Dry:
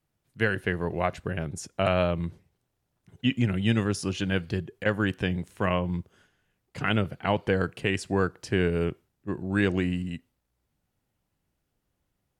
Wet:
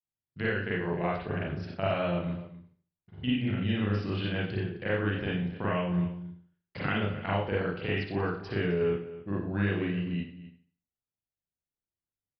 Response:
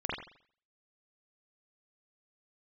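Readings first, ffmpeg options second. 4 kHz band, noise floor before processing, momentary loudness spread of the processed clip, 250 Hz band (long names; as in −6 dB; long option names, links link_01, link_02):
−4.0 dB, −79 dBFS, 7 LU, −3.0 dB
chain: -filter_complex "[0:a]acompressor=threshold=-43dB:ratio=2.5,agate=range=-33dB:threshold=-49dB:ratio=3:detection=peak,asplit=2[link_01][link_02];[link_02]adelay=262.4,volume=-15dB,highshelf=frequency=4000:gain=-5.9[link_03];[link_01][link_03]amix=inputs=2:normalize=0[link_04];[1:a]atrim=start_sample=2205,asetrate=48510,aresample=44100[link_05];[link_04][link_05]afir=irnorm=-1:irlink=0,aresample=11025,aresample=44100,volume=5dB"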